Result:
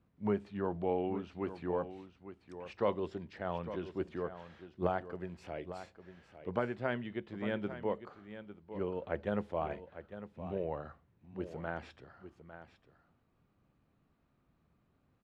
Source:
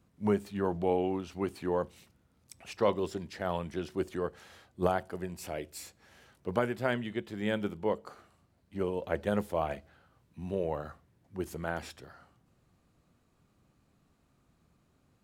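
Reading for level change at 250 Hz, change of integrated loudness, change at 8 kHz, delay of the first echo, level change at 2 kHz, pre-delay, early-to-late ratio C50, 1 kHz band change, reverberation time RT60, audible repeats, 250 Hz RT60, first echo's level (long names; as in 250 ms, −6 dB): −4.0 dB, −4.5 dB, below −20 dB, 853 ms, −4.5 dB, no reverb audible, no reverb audible, −4.5 dB, no reverb audible, 1, no reverb audible, −12.0 dB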